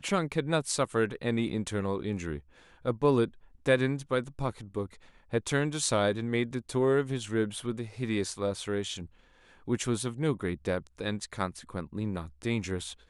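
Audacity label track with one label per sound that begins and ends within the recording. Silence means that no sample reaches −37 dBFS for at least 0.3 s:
2.850000	3.280000	sound
3.660000	4.860000	sound
5.330000	9.050000	sound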